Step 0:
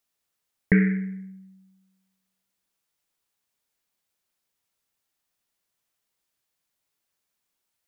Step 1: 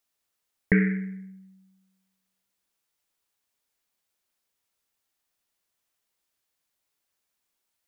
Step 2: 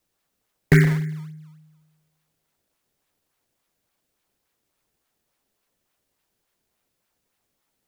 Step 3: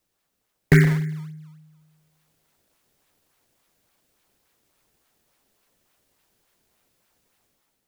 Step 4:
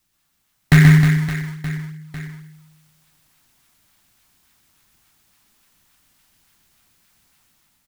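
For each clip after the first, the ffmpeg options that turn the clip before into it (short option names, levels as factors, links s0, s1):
-af "equalizer=f=150:t=o:w=0.92:g=-4"
-filter_complex "[0:a]afreqshift=-35,asplit=2[s0][s1];[s1]acrusher=samples=23:mix=1:aa=0.000001:lfo=1:lforange=36.8:lforate=3.5,volume=0.631[s2];[s0][s2]amix=inputs=2:normalize=0,volume=1.33"
-af "dynaudnorm=f=570:g=3:m=2.24"
-af "volume=3.55,asoftclip=hard,volume=0.282,equalizer=f=480:t=o:w=1.1:g=-14.5,aecho=1:1:130|312|566.8|923.5|1423:0.631|0.398|0.251|0.158|0.1,volume=2.24"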